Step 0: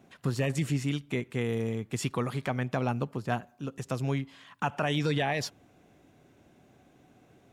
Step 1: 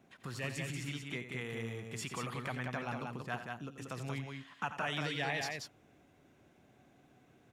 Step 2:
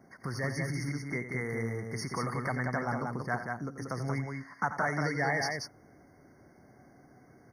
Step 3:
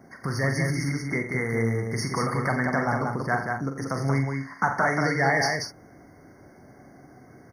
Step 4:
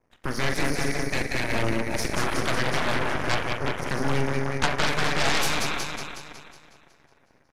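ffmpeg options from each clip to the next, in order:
-filter_complex "[0:a]acrossover=split=870[s0][s1];[s0]alimiter=level_in=1.78:limit=0.0631:level=0:latency=1:release=85,volume=0.562[s2];[s2][s1]amix=inputs=2:normalize=0,equalizer=f=1800:t=o:w=1.7:g=3,aecho=1:1:87.46|183.7:0.282|0.631,volume=0.447"
-af "afftfilt=real='re*eq(mod(floor(b*sr/1024/2200),2),0)':imag='im*eq(mod(floor(b*sr/1024/2200),2),0)':win_size=1024:overlap=0.75,volume=2.24"
-filter_complex "[0:a]asplit=2[s0][s1];[s1]adelay=44,volume=0.422[s2];[s0][s2]amix=inputs=2:normalize=0,volume=2.24"
-af "aecho=1:1:367|734|1101|1468|1835|2202:0.501|0.261|0.136|0.0705|0.0366|0.0191,aeval=exprs='0.335*(cos(1*acos(clip(val(0)/0.335,-1,1)))-cos(1*PI/2))+0.106*(cos(3*acos(clip(val(0)/0.335,-1,1)))-cos(3*PI/2))+0.0668*(cos(8*acos(clip(val(0)/0.335,-1,1)))-cos(8*PI/2))':c=same,aresample=32000,aresample=44100,volume=1.12"

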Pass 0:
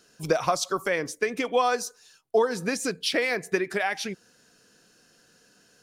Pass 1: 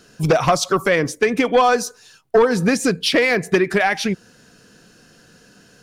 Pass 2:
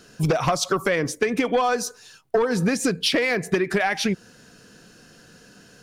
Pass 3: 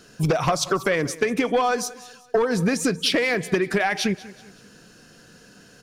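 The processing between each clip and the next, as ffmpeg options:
-af "bass=f=250:g=7,treble=f=4000:g=-4,aeval=exprs='0.398*sin(PI/2*2*val(0)/0.398)':c=same"
-af "acompressor=threshold=0.126:ratio=6"
-af "aecho=1:1:189|378|567:0.112|0.0482|0.0207"

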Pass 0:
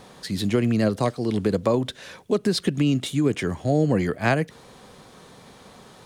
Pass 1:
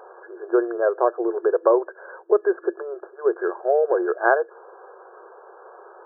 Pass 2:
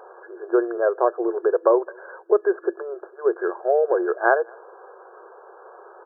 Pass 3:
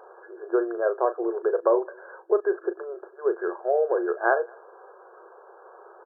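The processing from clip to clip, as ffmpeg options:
-af "afftfilt=real='re*between(b*sr/4096,340,1700)':imag='im*between(b*sr/4096,340,1700)':win_size=4096:overlap=0.75,volume=1.88"
-filter_complex "[0:a]asplit=2[s0][s1];[s1]adelay=209.9,volume=0.0355,highshelf=f=4000:g=-4.72[s2];[s0][s2]amix=inputs=2:normalize=0"
-filter_complex "[0:a]asplit=2[s0][s1];[s1]adelay=37,volume=0.282[s2];[s0][s2]amix=inputs=2:normalize=0,volume=0.631"

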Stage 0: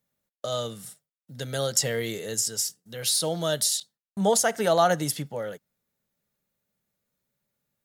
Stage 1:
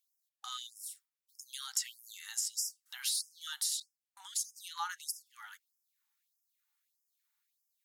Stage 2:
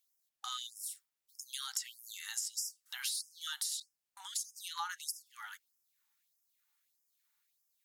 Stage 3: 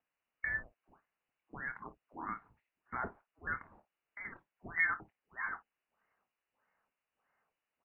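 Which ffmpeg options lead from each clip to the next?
-af "equalizer=f=320:w=4.8:g=7,acompressor=threshold=0.0126:ratio=2,afftfilt=real='re*gte(b*sr/1024,760*pow(5000/760,0.5+0.5*sin(2*PI*1.6*pts/sr)))':imag='im*gte(b*sr/1024,760*pow(5000/760,0.5+0.5*sin(2*PI*1.6*pts/sr)))':win_size=1024:overlap=0.75"
-af "acompressor=threshold=0.0112:ratio=3,volume=1.41"
-filter_complex "[0:a]asplit=2[s0][s1];[s1]aecho=0:1:25|54:0.251|0.141[s2];[s0][s2]amix=inputs=2:normalize=0,lowpass=f=2600:t=q:w=0.5098,lowpass=f=2600:t=q:w=0.6013,lowpass=f=2600:t=q:w=0.9,lowpass=f=2600:t=q:w=2.563,afreqshift=-3000,volume=2.66"

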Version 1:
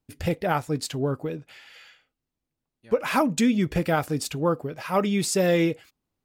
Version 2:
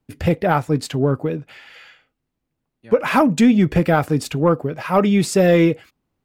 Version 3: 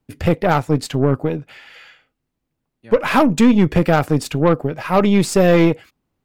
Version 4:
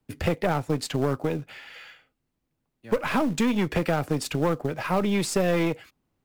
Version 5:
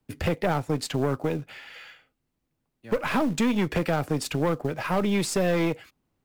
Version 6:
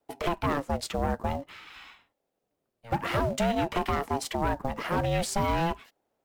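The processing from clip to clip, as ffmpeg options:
-filter_complex "[0:a]lowshelf=f=130:g=7,acrossover=split=110|3000[s0][s1][s2];[s1]acontrast=88[s3];[s0][s3][s2]amix=inputs=3:normalize=0"
-af "aeval=exprs='0.668*(cos(1*acos(clip(val(0)/0.668,-1,1)))-cos(1*PI/2))+0.0531*(cos(6*acos(clip(val(0)/0.668,-1,1)))-cos(6*PI/2))':c=same,volume=1.12"
-filter_complex "[0:a]acrossover=split=230|600[s0][s1][s2];[s0]acompressor=threshold=0.0447:ratio=4[s3];[s1]acompressor=threshold=0.0501:ratio=4[s4];[s2]acompressor=threshold=0.0501:ratio=4[s5];[s3][s4][s5]amix=inputs=3:normalize=0,asplit=2[s6][s7];[s7]acrusher=bits=3:mode=log:mix=0:aa=0.000001,volume=0.398[s8];[s6][s8]amix=inputs=2:normalize=0,volume=0.562"
-af "asoftclip=type=hard:threshold=0.141"
-af "aeval=exprs='val(0)*sin(2*PI*450*n/s+450*0.25/0.5*sin(2*PI*0.5*n/s))':c=same"

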